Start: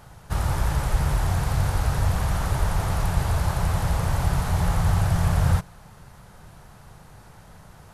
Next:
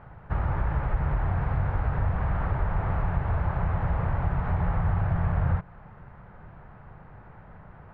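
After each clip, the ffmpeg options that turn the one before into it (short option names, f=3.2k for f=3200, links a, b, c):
-af "lowpass=f=2.1k:w=0.5412,lowpass=f=2.1k:w=1.3066,acompressor=threshold=-24dB:ratio=2"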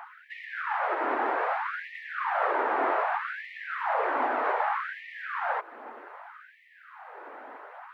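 -af "aphaser=in_gain=1:out_gain=1:delay=3.2:decay=0.24:speed=0.51:type=triangular,afftfilt=real='re*gte(b*sr/1024,220*pow(1800/220,0.5+0.5*sin(2*PI*0.64*pts/sr)))':imag='im*gte(b*sr/1024,220*pow(1800/220,0.5+0.5*sin(2*PI*0.64*pts/sr)))':win_size=1024:overlap=0.75,volume=9dB"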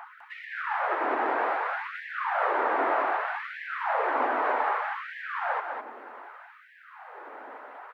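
-af "aecho=1:1:203:0.501"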